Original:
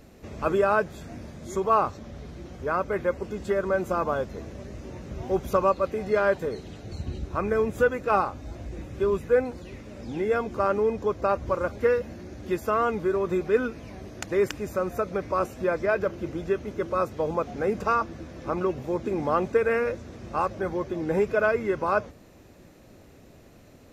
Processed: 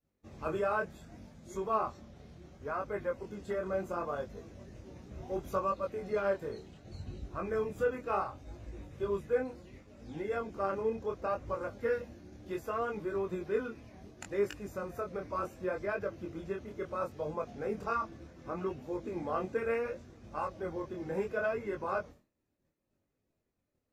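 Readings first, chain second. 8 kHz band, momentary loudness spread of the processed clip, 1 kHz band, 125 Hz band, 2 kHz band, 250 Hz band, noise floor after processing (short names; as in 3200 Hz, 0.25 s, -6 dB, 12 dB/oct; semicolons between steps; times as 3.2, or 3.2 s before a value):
n/a, 16 LU, -9.5 dB, -10.0 dB, -10.0 dB, -10.0 dB, -82 dBFS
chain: bin magnitudes rounded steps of 15 dB; expander -38 dBFS; chorus 0.69 Hz, delay 19.5 ms, depth 7.6 ms; gain -6.5 dB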